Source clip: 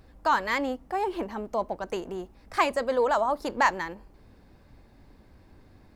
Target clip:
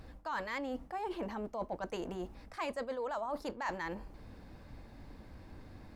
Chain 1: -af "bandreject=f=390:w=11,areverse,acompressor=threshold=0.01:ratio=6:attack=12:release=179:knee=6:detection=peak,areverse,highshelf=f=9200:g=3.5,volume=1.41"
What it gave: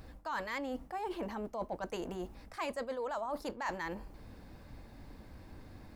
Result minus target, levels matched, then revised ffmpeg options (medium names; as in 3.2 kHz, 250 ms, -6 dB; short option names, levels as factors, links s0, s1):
8 kHz band +2.5 dB
-af "bandreject=f=390:w=11,areverse,acompressor=threshold=0.01:ratio=6:attack=12:release=179:knee=6:detection=peak,areverse,highshelf=f=9200:g=-4.5,volume=1.41"